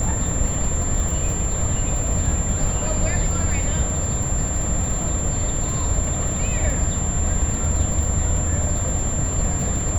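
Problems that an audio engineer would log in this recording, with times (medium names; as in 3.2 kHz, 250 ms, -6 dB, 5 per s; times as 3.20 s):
crackle 53 per s -27 dBFS
whine 7.3 kHz -26 dBFS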